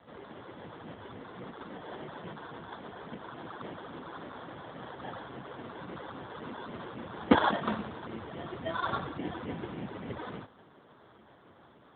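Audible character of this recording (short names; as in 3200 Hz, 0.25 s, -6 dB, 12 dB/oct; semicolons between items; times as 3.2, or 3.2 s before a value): a quantiser's noise floor 10-bit, dither triangular; phasing stages 8, 3.6 Hz, lowest notch 170–2500 Hz; aliases and images of a low sample rate 2500 Hz, jitter 0%; AMR-NB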